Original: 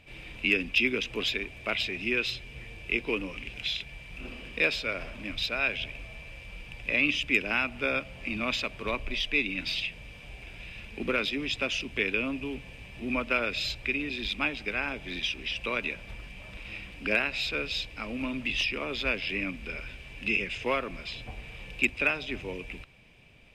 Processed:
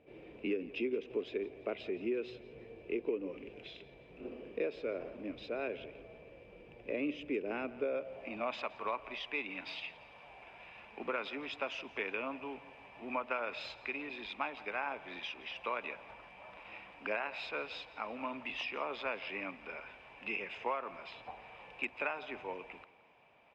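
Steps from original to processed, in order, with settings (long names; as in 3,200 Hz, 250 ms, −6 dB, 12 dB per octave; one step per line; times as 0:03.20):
band-pass filter sweep 420 Hz → 890 Hz, 0:07.72–0:08.65
downward compressor 6 to 1, threshold −37 dBFS, peak gain reduction 8.5 dB
on a send: repeating echo 170 ms, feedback 45%, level −19 dB
on the sum: level +5.5 dB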